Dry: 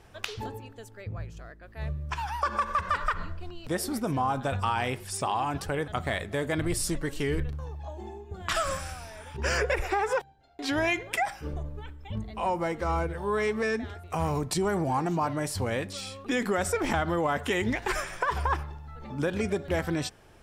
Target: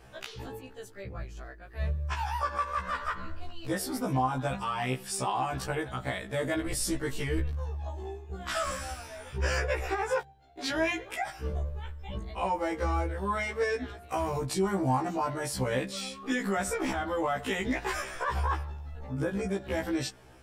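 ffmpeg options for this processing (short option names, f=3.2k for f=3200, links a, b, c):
-filter_complex "[0:a]asettb=1/sr,asplit=3[a][b][c];[a]atrim=end=18.994[d];[b]atrim=start=18.99:end=19.53,asetpts=PTS-STARTPTS,afade=t=in:d=0.004:c=qsin,afade=t=out:st=0.536:d=0.004:c=qsin,equalizer=f=3.5k:t=o:w=1.4:g=-9[e];[c]atrim=start=19.526[f];[d][e]acrossfade=d=0.004:c1=hsin:c2=qsin[g];[g][f]acrossfade=d=0.004:c1=qsin:c2=hsin,alimiter=limit=-20.5dB:level=0:latency=1:release=323,afftfilt=real='re*1.73*eq(mod(b,3),0)':imag='im*1.73*eq(mod(b,3),0)':win_size=2048:overlap=0.75,volume=3dB"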